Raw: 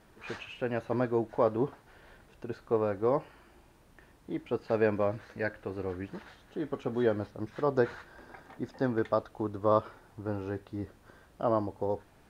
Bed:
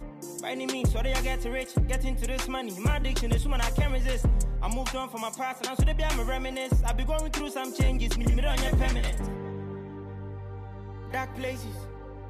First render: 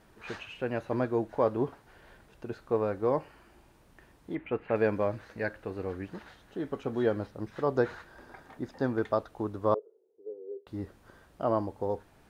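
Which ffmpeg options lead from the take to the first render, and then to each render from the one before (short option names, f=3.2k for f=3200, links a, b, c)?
-filter_complex "[0:a]asettb=1/sr,asplit=3[a][b][c];[a]atrim=end=4.354[d];[b]atrim=start=4.35:end=4.76,asetpts=PTS-STARTPTS,afade=t=in:d=0.004:c=qsin,afade=t=out:st=0.406:d=0.004:c=qsin,highshelf=f=3.5k:t=q:w=3:g=-14[e];[c]atrim=start=4.756[f];[d][e]acrossfade=d=0.004:c1=hsin:c2=qsin[g];[g][f]acrossfade=d=0.004:c1=qsin:c2=hsin,asettb=1/sr,asplit=3[h][i][j];[h]atrim=end=9.744[k];[i]atrim=start=9.74:end=10.67,asetpts=PTS-STARTPTS,afade=t=in:d=0.004:c=qsin,afade=t=out:st=0.926:d=0.004:c=qsin,asuperpass=centerf=430:order=4:qfactor=4.6[l];[j]atrim=start=10.666[m];[k][l]acrossfade=d=0.004:c1=hsin:c2=qsin[n];[n][m]acrossfade=d=0.004:c1=qsin:c2=hsin"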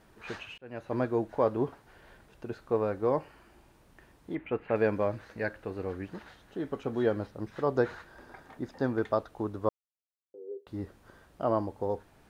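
-filter_complex "[0:a]asplit=4[a][b][c][d];[a]atrim=end=0.58,asetpts=PTS-STARTPTS,afade=t=out:st=0.576:d=0.004:c=hsin[e];[b]atrim=start=0.58:end=9.69,asetpts=PTS-STARTPTS,afade=t=in:d=0.42,afade=t=out:st=9.106:d=0.004:c=hsin[f];[c]atrim=start=9.69:end=10.34,asetpts=PTS-STARTPTS,volume=0[g];[d]atrim=start=10.34,asetpts=PTS-STARTPTS,afade=t=in:d=0.004:c=hsin[h];[e][f][g][h]concat=n=4:v=0:a=1"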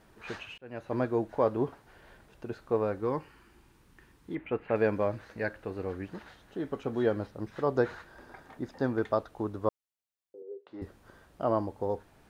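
-filter_complex "[0:a]asettb=1/sr,asplit=3[a][b][c];[a]atrim=end=3.004[d];[b]atrim=start=3:end=4.37,asetpts=PTS-STARTPTS,afade=t=in:d=0.004:c=qsin,afade=t=out:st=1.366:d=0.004:c=qsin,equalizer=f=640:w=2.7:g=-12.5[e];[c]atrim=start=4.366[f];[d][e]acrossfade=d=0.004:c1=hsin:c2=qsin[g];[g][f]acrossfade=d=0.004:c1=qsin:c2=hsin,asettb=1/sr,asplit=3[h][i][j];[h]atrim=end=10.424[k];[i]atrim=start=10.42:end=10.82,asetpts=PTS-STARTPTS,afade=t=in:d=0.004:c=qsin,afade=t=out:st=0.396:d=0.004:c=qsin,highpass=370,lowpass=3.3k[l];[j]atrim=start=10.816[m];[k][l]acrossfade=d=0.004:c1=hsin:c2=qsin[n];[n][m]acrossfade=d=0.004:c1=qsin:c2=hsin"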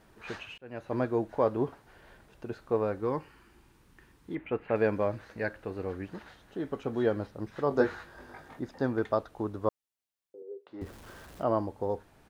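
-filter_complex "[0:a]asplit=3[a][b][c];[a]afade=t=out:st=7.7:d=0.02[d];[b]asplit=2[e][f];[f]adelay=20,volume=-2dB[g];[e][g]amix=inputs=2:normalize=0,afade=t=in:st=7.7:d=0.02,afade=t=out:st=8.59:d=0.02[h];[c]afade=t=in:st=8.59:d=0.02[i];[d][h][i]amix=inputs=3:normalize=0,asettb=1/sr,asplit=3[j][k][l];[j]atrim=end=10.814[m];[k]atrim=start=10.81:end=11.43,asetpts=PTS-STARTPTS,afade=t=in:d=0.004:c=qsin,afade=t=out:st=0.616:d=0.004:c=qsin,aeval=exprs='val(0)+0.5*0.00447*sgn(val(0))':c=same[n];[l]atrim=start=11.426[o];[m][n]acrossfade=d=0.004:c1=hsin:c2=qsin[p];[p][o]acrossfade=d=0.004:c1=qsin:c2=hsin"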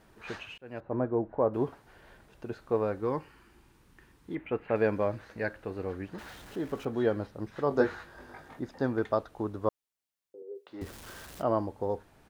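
-filter_complex "[0:a]asettb=1/sr,asplit=3[a][b][c];[a]atrim=end=0.804[d];[b]atrim=start=0.8:end=1.54,asetpts=PTS-STARTPTS,afade=t=in:d=0.004:c=qsin,afade=t=out:st=0.736:d=0.004:c=qsin,lowpass=1.1k[e];[c]atrim=start=1.536[f];[d][e]acrossfade=d=0.004:c1=hsin:c2=qsin[g];[g][f]acrossfade=d=0.004:c1=qsin:c2=hsin,asettb=1/sr,asplit=3[h][i][j];[h]atrim=end=6.184[k];[i]atrim=start=6.18:end=6.85,asetpts=PTS-STARTPTS,afade=t=in:d=0.004:c=qsin,afade=t=out:st=0.666:d=0.004:c=qsin,aeval=exprs='val(0)+0.5*0.00501*sgn(val(0))':c=same[l];[j]atrim=start=6.846[m];[k][l]acrossfade=d=0.004:c1=hsin:c2=qsin[n];[n][m]acrossfade=d=0.004:c1=qsin:c2=hsin,asettb=1/sr,asplit=3[o][p][q];[o]atrim=end=10.554[r];[p]atrim=start=10.55:end=11.42,asetpts=PTS-STARTPTS,afade=t=in:d=0.004:c=qsin,afade=t=out:st=0.866:d=0.004:c=qsin,highshelf=f=2.1k:g=8.5[s];[q]atrim=start=11.416[t];[r][s]acrossfade=d=0.004:c1=hsin:c2=qsin[u];[u][t]acrossfade=d=0.004:c1=qsin:c2=hsin"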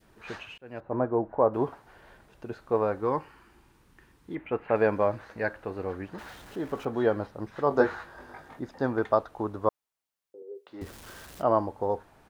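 -af "adynamicequalizer=threshold=0.00794:dfrequency=930:dqfactor=0.8:tfrequency=930:tqfactor=0.8:attack=5:release=100:ratio=0.375:range=3.5:mode=boostabove:tftype=bell"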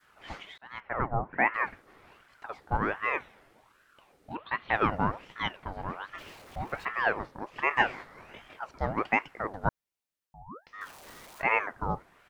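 -af "aeval=exprs='val(0)*sin(2*PI*950*n/s+950*0.65/1.3*sin(2*PI*1.3*n/s))':c=same"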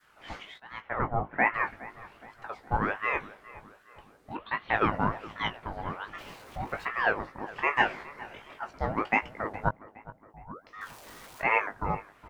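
-filter_complex "[0:a]asplit=2[a][b];[b]adelay=19,volume=-7.5dB[c];[a][c]amix=inputs=2:normalize=0,asplit=2[d][e];[e]adelay=415,lowpass=f=2k:p=1,volume=-17.5dB,asplit=2[f][g];[g]adelay=415,lowpass=f=2k:p=1,volume=0.54,asplit=2[h][i];[i]adelay=415,lowpass=f=2k:p=1,volume=0.54,asplit=2[j][k];[k]adelay=415,lowpass=f=2k:p=1,volume=0.54,asplit=2[l][m];[m]adelay=415,lowpass=f=2k:p=1,volume=0.54[n];[d][f][h][j][l][n]amix=inputs=6:normalize=0"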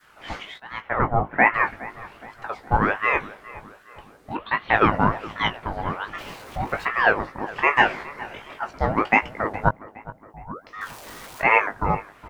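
-af "volume=8dB,alimiter=limit=-2dB:level=0:latency=1"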